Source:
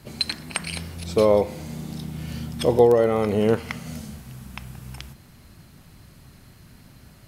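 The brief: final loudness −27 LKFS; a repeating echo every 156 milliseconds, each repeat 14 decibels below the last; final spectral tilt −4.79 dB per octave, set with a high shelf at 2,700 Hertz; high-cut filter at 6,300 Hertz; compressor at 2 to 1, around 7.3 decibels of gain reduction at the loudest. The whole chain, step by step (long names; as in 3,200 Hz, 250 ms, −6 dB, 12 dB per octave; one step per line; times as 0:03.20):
low-pass filter 6,300 Hz
high-shelf EQ 2,700 Hz +8 dB
downward compressor 2 to 1, threshold −25 dBFS
repeating echo 156 ms, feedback 20%, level −14 dB
level +1.5 dB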